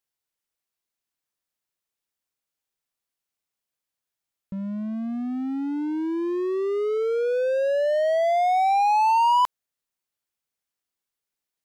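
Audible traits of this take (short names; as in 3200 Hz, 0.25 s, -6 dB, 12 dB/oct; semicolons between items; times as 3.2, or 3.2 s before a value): noise floor -87 dBFS; spectral tilt -3.5 dB/oct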